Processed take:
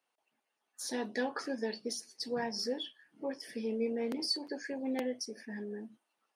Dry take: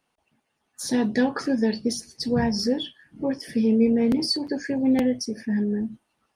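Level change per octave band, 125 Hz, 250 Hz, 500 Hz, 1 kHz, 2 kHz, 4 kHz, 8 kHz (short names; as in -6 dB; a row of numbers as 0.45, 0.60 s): -21.0, -17.0, -9.5, -8.0, -8.0, -8.0, -8.0 dB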